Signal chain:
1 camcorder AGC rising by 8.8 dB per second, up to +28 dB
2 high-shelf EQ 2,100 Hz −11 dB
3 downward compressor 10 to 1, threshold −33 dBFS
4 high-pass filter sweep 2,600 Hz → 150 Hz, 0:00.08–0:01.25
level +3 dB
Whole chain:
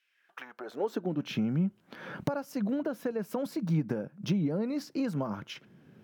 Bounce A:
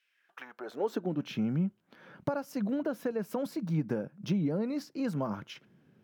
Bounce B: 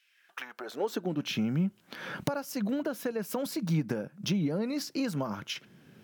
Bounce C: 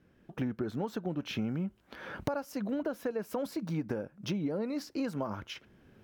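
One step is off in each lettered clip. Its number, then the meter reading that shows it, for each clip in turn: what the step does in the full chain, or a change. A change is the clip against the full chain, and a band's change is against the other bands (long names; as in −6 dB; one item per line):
1, change in momentary loudness spread −3 LU
2, 8 kHz band +8.5 dB
4, 125 Hz band −4.5 dB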